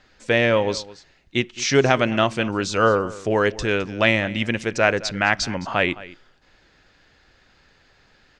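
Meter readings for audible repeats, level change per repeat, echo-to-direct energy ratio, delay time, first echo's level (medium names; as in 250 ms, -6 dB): 1, no regular repeats, -18.5 dB, 213 ms, -18.5 dB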